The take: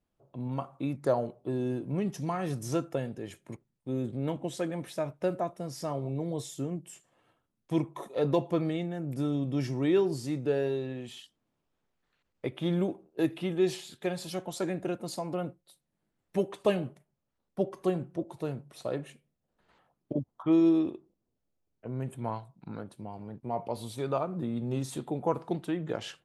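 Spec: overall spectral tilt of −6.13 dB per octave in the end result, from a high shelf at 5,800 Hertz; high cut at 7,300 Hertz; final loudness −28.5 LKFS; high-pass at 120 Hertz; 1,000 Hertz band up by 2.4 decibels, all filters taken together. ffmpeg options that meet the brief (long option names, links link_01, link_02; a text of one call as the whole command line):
ffmpeg -i in.wav -af "highpass=120,lowpass=7300,equalizer=frequency=1000:width_type=o:gain=3.5,highshelf=frequency=5800:gain=-8,volume=3.5dB" out.wav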